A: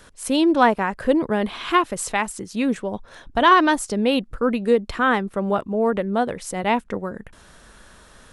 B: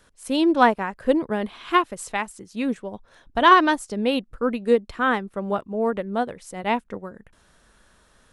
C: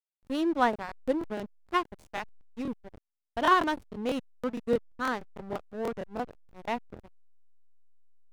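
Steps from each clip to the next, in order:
upward expansion 1.5:1, over -32 dBFS; trim +1 dB
hysteresis with a dead band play -22.5 dBFS; crackling interface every 0.16 s, samples 1024, repeat, from 0.71 s; trim -8 dB

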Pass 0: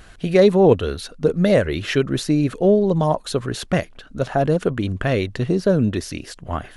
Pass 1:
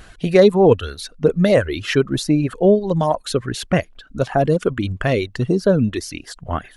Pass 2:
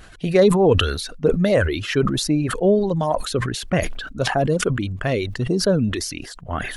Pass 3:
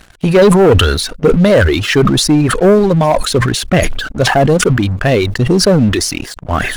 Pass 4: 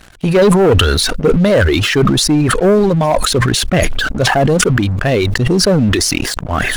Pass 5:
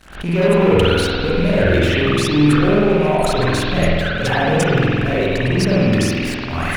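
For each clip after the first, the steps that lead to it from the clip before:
reverb removal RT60 1.1 s; trim +2.5 dB
decay stretcher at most 53 dB/s; trim -3.5 dB
waveshaping leveller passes 3
decay stretcher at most 20 dB/s; trim -2.5 dB
rattle on loud lows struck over -20 dBFS, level -13 dBFS; spring tank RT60 1.9 s, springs 47 ms, chirp 65 ms, DRR -8.5 dB; swell ahead of each attack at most 110 dB/s; trim -12.5 dB

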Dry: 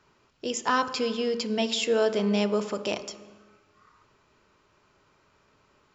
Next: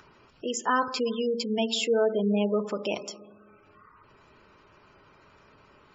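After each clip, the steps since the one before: spectral gate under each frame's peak -20 dB strong; upward compressor, threshold -48 dBFS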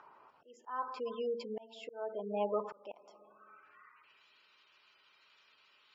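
band-pass sweep 900 Hz -> 3.5 kHz, 3.22–4.28 s; slow attack 543 ms; trim +3.5 dB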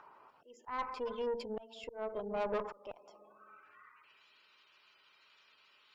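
valve stage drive 33 dB, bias 0.65; trim +4 dB

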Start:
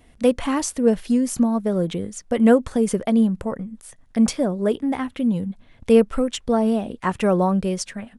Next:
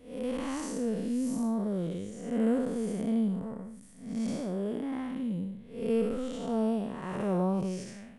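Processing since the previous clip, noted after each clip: spectral blur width 242 ms; trim -7 dB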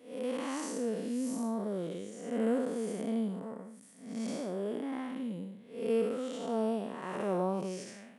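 high-pass 270 Hz 12 dB/octave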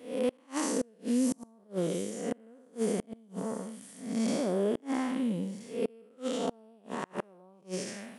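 feedback echo behind a high-pass 663 ms, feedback 59%, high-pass 4.5 kHz, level -8 dB; inverted gate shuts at -26 dBFS, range -32 dB; trim +7 dB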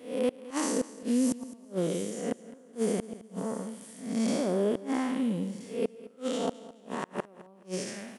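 feedback delay 212 ms, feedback 30%, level -17.5 dB; trim +1.5 dB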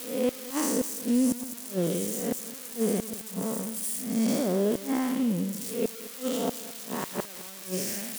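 zero-crossing glitches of -26.5 dBFS; bass shelf 210 Hz +6 dB

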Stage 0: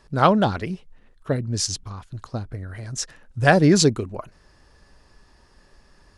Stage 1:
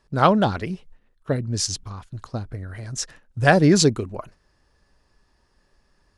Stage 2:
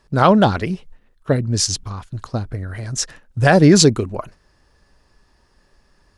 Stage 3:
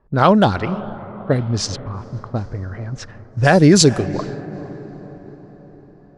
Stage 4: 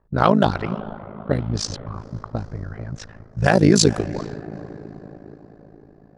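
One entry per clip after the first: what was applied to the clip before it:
gate -44 dBFS, range -9 dB
loudness maximiser +7 dB; trim -1 dB
echo that smears into a reverb 450 ms, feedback 56%, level -15.5 dB; level-controlled noise filter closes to 1 kHz, open at -9.5 dBFS
AM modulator 54 Hz, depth 80%

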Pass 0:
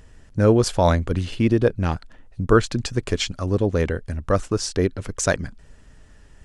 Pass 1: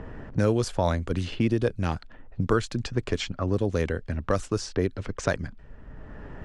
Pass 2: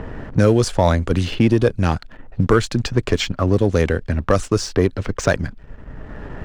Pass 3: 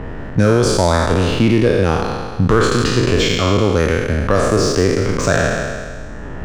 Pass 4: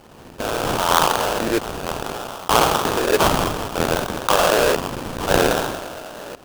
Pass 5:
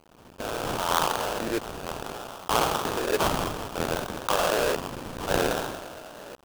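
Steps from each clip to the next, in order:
level-controlled noise filter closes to 1.2 kHz, open at -16.5 dBFS; three bands compressed up and down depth 70%; trim -5.5 dB
waveshaping leveller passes 1; trim +5.5 dB
spectral sustain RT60 1.74 s; in parallel at -1 dB: peak limiter -6.5 dBFS, peak gain reduction 7.5 dB; on the sum: trim -5 dB
LFO high-pass saw down 0.63 Hz 510–3300 Hz; sample-rate reducer 2.1 kHz, jitter 20%; trim -1 dB
small samples zeroed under -41 dBFS; trim -8 dB

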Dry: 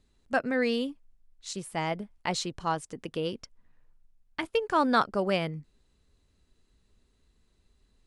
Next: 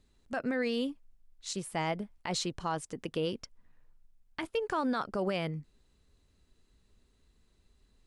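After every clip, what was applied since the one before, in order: peak limiter -23 dBFS, peak gain reduction 11.5 dB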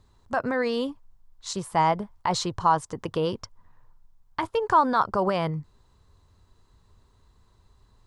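fifteen-band graphic EQ 100 Hz +10 dB, 250 Hz -4 dB, 1 kHz +12 dB, 2.5 kHz -6 dB, 10 kHz -5 dB; trim +6 dB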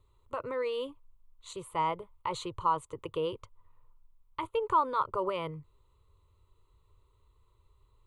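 static phaser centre 1.1 kHz, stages 8; trim -5 dB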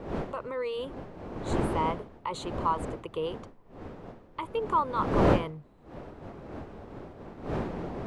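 wind noise 500 Hz -34 dBFS

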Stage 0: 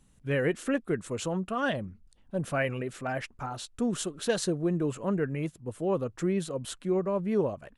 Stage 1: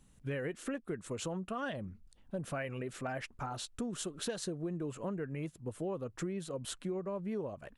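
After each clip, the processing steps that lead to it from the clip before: compression, threshold -34 dBFS, peak gain reduction 12.5 dB; trim -1 dB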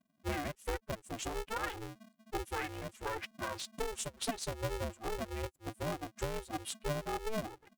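expander on every frequency bin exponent 2; polarity switched at an audio rate 220 Hz; trim +4.5 dB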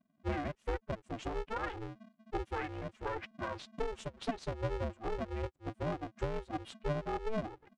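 tape spacing loss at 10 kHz 25 dB; trim +2.5 dB

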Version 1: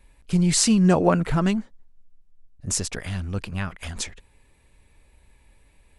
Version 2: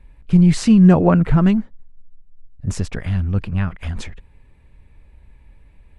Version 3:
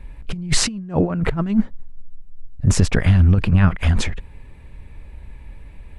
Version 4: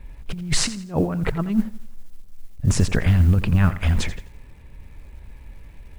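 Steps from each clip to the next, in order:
tone controls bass +8 dB, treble -14 dB; trim +2 dB
compressor with a negative ratio -19 dBFS, ratio -0.5; trim +4 dB
modulation noise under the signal 35 dB; bit-crushed delay 85 ms, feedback 35%, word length 7-bit, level -14.5 dB; trim -3 dB

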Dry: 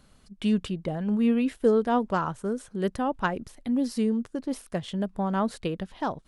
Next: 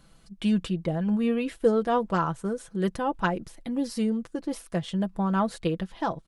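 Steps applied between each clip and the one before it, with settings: comb 6 ms, depth 53%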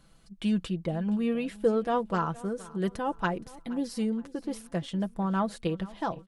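feedback delay 470 ms, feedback 35%, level -20 dB; trim -3 dB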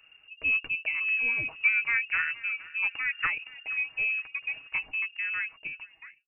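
fade out at the end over 1.54 s; frequency inversion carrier 2.8 kHz

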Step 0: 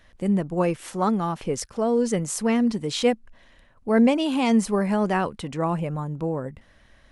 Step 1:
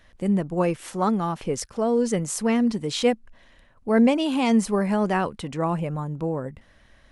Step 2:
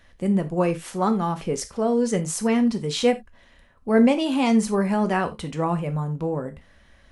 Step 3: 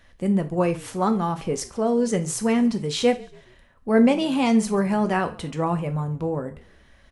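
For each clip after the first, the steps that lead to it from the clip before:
no audible change
gated-style reverb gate 110 ms falling, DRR 7.5 dB
frequency-shifting echo 140 ms, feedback 42%, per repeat -40 Hz, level -23 dB

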